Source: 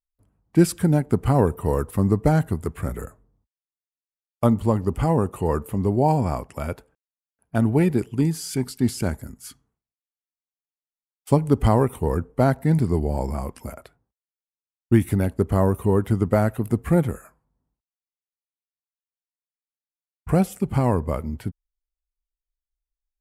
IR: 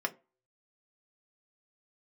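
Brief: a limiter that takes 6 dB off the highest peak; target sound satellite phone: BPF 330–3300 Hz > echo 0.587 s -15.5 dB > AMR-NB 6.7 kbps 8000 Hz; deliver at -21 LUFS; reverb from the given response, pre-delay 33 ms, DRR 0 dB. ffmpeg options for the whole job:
-filter_complex "[0:a]alimiter=limit=-10.5dB:level=0:latency=1,asplit=2[a][b];[1:a]atrim=start_sample=2205,adelay=33[c];[b][c]afir=irnorm=-1:irlink=0,volume=-5.5dB[d];[a][d]amix=inputs=2:normalize=0,highpass=330,lowpass=3.3k,aecho=1:1:587:0.168,volume=6.5dB" -ar 8000 -c:a libopencore_amrnb -b:a 6700

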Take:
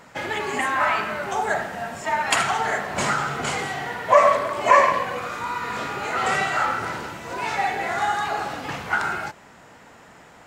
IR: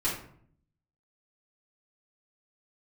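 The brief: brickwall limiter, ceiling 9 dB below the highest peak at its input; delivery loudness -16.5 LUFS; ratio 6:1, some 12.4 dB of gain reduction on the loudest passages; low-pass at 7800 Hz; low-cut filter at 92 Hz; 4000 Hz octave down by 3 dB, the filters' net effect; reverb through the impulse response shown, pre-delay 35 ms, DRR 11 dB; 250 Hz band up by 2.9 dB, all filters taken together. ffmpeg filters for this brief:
-filter_complex "[0:a]highpass=92,lowpass=7.8k,equalizer=f=250:t=o:g=4,equalizer=f=4k:t=o:g=-4,acompressor=threshold=-23dB:ratio=6,alimiter=limit=-20dB:level=0:latency=1,asplit=2[a][b];[1:a]atrim=start_sample=2205,adelay=35[c];[b][c]afir=irnorm=-1:irlink=0,volume=-19dB[d];[a][d]amix=inputs=2:normalize=0,volume=12.5dB"

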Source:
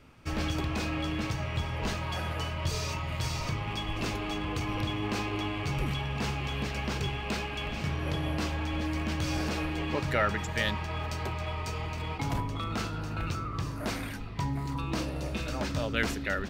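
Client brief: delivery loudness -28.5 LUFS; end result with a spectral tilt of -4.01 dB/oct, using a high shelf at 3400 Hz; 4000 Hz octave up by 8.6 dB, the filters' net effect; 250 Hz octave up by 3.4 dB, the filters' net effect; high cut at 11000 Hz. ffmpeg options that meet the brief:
-af "lowpass=11k,equalizer=f=250:t=o:g=4.5,highshelf=f=3.4k:g=7,equalizer=f=4k:t=o:g=6.5,volume=0.5dB"

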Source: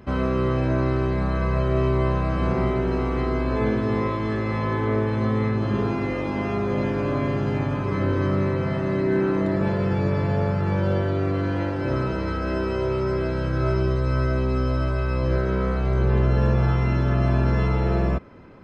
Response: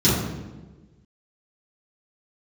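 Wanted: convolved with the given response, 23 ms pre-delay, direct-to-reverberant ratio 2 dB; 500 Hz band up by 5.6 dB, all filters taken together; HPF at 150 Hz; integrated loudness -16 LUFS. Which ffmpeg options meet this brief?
-filter_complex "[0:a]highpass=150,equalizer=f=500:t=o:g=7.5,asplit=2[a][b];[1:a]atrim=start_sample=2205,adelay=23[c];[b][c]afir=irnorm=-1:irlink=0,volume=-20.5dB[d];[a][d]amix=inputs=2:normalize=0,volume=-2.5dB"

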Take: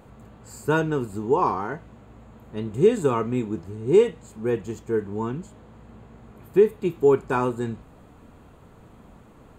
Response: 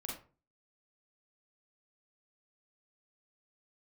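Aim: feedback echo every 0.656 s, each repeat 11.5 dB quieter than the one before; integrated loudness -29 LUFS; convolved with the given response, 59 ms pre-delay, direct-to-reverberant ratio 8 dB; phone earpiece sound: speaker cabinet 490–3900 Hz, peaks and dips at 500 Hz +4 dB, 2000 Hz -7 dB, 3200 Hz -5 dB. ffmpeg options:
-filter_complex "[0:a]aecho=1:1:656|1312|1968:0.266|0.0718|0.0194,asplit=2[a][b];[1:a]atrim=start_sample=2205,adelay=59[c];[b][c]afir=irnorm=-1:irlink=0,volume=-7dB[d];[a][d]amix=inputs=2:normalize=0,highpass=490,equalizer=f=500:t=q:w=4:g=4,equalizer=f=2k:t=q:w=4:g=-7,equalizer=f=3.2k:t=q:w=4:g=-5,lowpass=f=3.9k:w=0.5412,lowpass=f=3.9k:w=1.3066,volume=-2.5dB"

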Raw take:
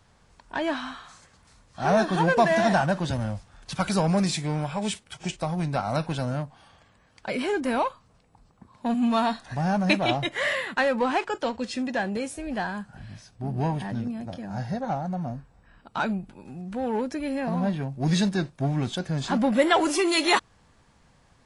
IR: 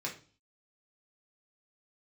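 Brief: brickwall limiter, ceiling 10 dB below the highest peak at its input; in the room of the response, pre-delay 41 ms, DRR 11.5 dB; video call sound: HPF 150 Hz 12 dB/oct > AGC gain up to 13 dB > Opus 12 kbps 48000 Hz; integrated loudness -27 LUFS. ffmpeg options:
-filter_complex "[0:a]alimiter=limit=-18dB:level=0:latency=1,asplit=2[a][b];[1:a]atrim=start_sample=2205,adelay=41[c];[b][c]afir=irnorm=-1:irlink=0,volume=-14dB[d];[a][d]amix=inputs=2:normalize=0,highpass=150,dynaudnorm=m=13dB,volume=-4.5dB" -ar 48000 -c:a libopus -b:a 12k

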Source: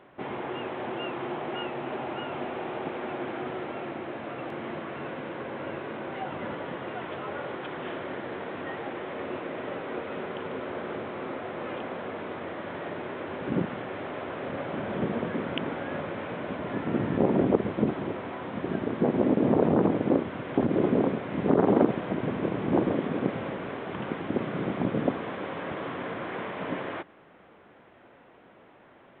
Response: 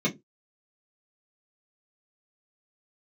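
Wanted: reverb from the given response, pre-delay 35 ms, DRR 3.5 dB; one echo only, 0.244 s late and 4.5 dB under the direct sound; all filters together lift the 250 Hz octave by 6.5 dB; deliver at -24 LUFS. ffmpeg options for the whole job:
-filter_complex "[0:a]equalizer=f=250:t=o:g=8,aecho=1:1:244:0.596,asplit=2[a][b];[1:a]atrim=start_sample=2205,adelay=35[c];[b][c]afir=irnorm=-1:irlink=0,volume=-14dB[d];[a][d]amix=inputs=2:normalize=0,volume=-5.5dB"

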